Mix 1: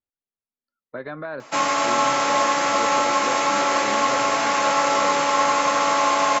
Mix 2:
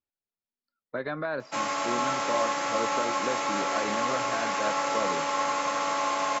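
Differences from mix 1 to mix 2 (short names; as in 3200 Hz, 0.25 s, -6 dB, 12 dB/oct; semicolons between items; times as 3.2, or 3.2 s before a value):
speech: remove air absorption 140 m; background -8.5 dB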